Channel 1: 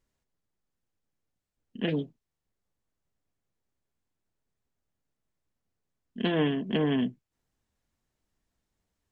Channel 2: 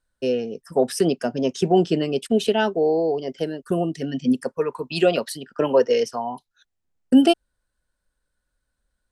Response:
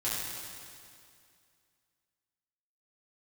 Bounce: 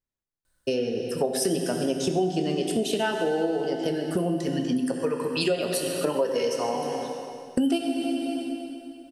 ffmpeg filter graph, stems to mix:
-filter_complex "[0:a]volume=0.2,asplit=2[s0][s1];[s1]volume=0.237[s2];[1:a]highshelf=f=6800:g=10,adelay=450,volume=1.12,asplit=2[s3][s4];[s4]volume=0.473[s5];[2:a]atrim=start_sample=2205[s6];[s2][s5]amix=inputs=2:normalize=0[s7];[s7][s6]afir=irnorm=-1:irlink=0[s8];[s0][s3][s8]amix=inputs=3:normalize=0,acompressor=threshold=0.0631:ratio=4"

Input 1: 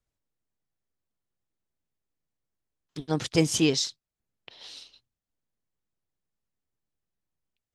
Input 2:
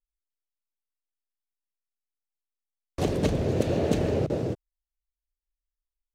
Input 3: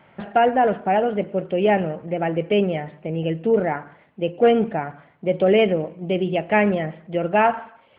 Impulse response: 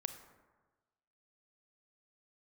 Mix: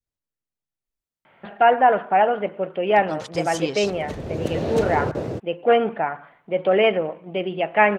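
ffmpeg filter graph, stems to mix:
-filter_complex "[0:a]volume=0.501,asplit=2[s0][s1];[1:a]adelay=850,volume=0.944[s2];[2:a]lowshelf=f=300:g=-10.5,adelay=1250,volume=0.944[s3];[s1]apad=whole_len=308541[s4];[s2][s4]sidechaincompress=threshold=0.01:ratio=8:attack=11:release=681[s5];[s0][s5][s3]amix=inputs=3:normalize=0,adynamicequalizer=threshold=0.0224:dfrequency=1100:dqfactor=0.89:tfrequency=1100:tqfactor=0.89:attack=5:release=100:ratio=0.375:range=4:mode=boostabove:tftype=bell"

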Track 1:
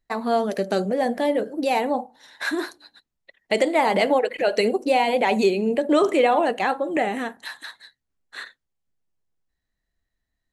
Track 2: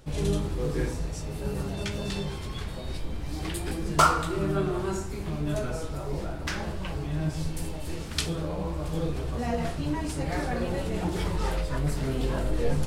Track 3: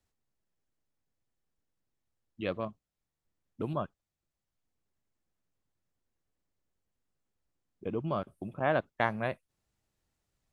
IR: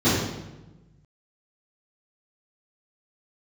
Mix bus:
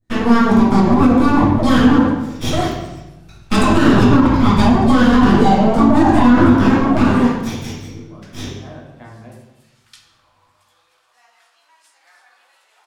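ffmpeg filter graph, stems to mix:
-filter_complex "[0:a]equalizer=f=8500:w=6.1:g=12,aeval=exprs='abs(val(0))':c=same,adynamicequalizer=threshold=0.0126:dfrequency=1600:dqfactor=0.7:tfrequency=1600:tqfactor=0.7:attack=5:release=100:ratio=0.375:range=3.5:mode=cutabove:tftype=highshelf,volume=1.19,asplit=2[s0][s1];[s1]volume=0.316[s2];[1:a]highpass=f=1000:w=0.5412,highpass=f=1000:w=1.3066,adelay=1750,volume=0.178,asplit=2[s3][s4];[s4]volume=0.0944[s5];[2:a]volume=0.158,asplit=2[s6][s7];[s7]volume=0.158[s8];[3:a]atrim=start_sample=2205[s9];[s2][s5][s8]amix=inputs=3:normalize=0[s10];[s10][s9]afir=irnorm=-1:irlink=0[s11];[s0][s3][s6][s11]amix=inputs=4:normalize=0,alimiter=limit=0.794:level=0:latency=1:release=78"

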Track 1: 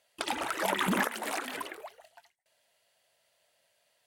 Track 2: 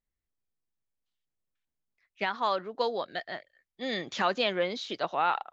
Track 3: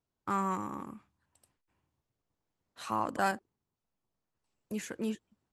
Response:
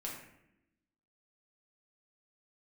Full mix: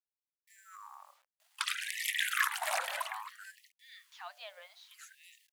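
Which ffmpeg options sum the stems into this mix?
-filter_complex "[0:a]adelay=1400,volume=1.19[s0];[1:a]bandreject=f=120:t=h:w=4,bandreject=f=240:t=h:w=4,bandreject=f=360:t=h:w=4,bandreject=f=480:t=h:w=4,bandreject=f=600:t=h:w=4,bandreject=f=720:t=h:w=4,bandreject=f=840:t=h:w=4,volume=0.119[s1];[2:a]equalizer=f=3100:w=0.9:g=-11,alimiter=level_in=1.06:limit=0.0631:level=0:latency=1,volume=0.944,bandreject=f=60:t=h:w=6,bandreject=f=120:t=h:w=6,bandreject=f=180:t=h:w=6,bandreject=f=240:t=h:w=6,bandreject=f=300:t=h:w=6,bandreject=f=360:t=h:w=6,adelay=200,volume=0.501[s2];[s0][s1][s2]amix=inputs=3:normalize=0,acrusher=bits=10:mix=0:aa=0.000001,afftfilt=real='re*gte(b*sr/1024,500*pow(1800/500,0.5+0.5*sin(2*PI*0.61*pts/sr)))':imag='im*gte(b*sr/1024,500*pow(1800/500,0.5+0.5*sin(2*PI*0.61*pts/sr)))':win_size=1024:overlap=0.75"

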